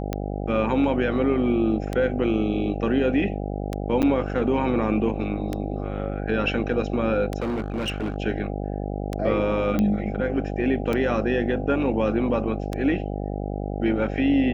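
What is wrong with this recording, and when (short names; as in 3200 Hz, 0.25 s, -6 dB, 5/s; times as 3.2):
buzz 50 Hz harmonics 16 -29 dBFS
tick 33 1/3 rpm -13 dBFS
4.02–4.03 gap 8.9 ms
7.4–8.16 clipped -23 dBFS
9.79 pop -12 dBFS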